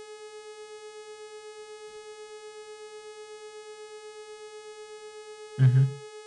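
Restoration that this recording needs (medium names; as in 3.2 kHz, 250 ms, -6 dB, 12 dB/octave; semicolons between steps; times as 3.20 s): clip repair -13 dBFS; de-hum 421.9 Hz, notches 23; band-stop 430 Hz, Q 30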